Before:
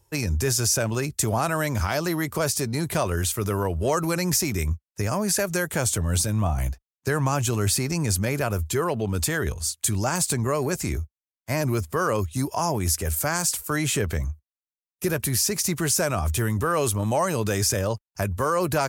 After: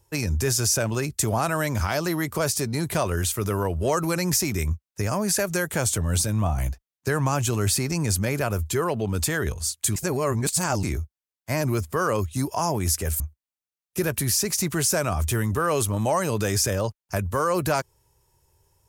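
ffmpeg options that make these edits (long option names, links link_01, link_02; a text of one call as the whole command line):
ffmpeg -i in.wav -filter_complex "[0:a]asplit=4[link_01][link_02][link_03][link_04];[link_01]atrim=end=9.962[link_05];[link_02]atrim=start=9.958:end=10.832,asetpts=PTS-STARTPTS,areverse[link_06];[link_03]atrim=start=10.828:end=13.202[link_07];[link_04]atrim=start=14.258[link_08];[link_05][link_06]acrossfade=duration=0.004:curve1=hsin:curve2=hsin[link_09];[link_09][link_07]acrossfade=duration=0.004:curve1=hsin:curve2=hsin[link_10];[link_10][link_08]acrossfade=duration=0.004:curve1=hsin:curve2=hsin" out.wav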